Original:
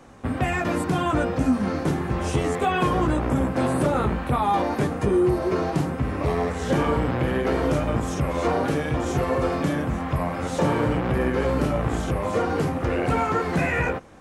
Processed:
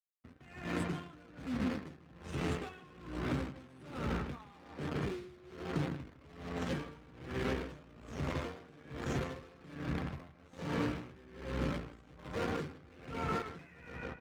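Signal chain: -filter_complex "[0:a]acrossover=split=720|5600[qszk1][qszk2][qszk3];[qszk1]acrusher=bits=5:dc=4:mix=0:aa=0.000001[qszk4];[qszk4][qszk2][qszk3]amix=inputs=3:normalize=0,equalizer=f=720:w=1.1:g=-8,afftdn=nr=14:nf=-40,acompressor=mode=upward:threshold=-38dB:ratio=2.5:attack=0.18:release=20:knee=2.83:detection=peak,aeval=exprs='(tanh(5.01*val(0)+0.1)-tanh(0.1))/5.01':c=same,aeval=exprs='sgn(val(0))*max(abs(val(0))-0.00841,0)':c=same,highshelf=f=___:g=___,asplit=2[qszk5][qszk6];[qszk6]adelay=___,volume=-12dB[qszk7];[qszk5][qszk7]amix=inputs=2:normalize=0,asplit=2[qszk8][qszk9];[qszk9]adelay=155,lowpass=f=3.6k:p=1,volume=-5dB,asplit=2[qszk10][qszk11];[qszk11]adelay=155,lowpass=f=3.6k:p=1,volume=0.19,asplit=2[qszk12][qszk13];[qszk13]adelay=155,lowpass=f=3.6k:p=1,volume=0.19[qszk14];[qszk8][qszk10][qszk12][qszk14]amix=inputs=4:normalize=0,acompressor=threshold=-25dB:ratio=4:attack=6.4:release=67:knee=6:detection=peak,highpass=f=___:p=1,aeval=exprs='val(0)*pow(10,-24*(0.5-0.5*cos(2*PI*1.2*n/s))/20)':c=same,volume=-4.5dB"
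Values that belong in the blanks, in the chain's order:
9k, -7.5, 13, 70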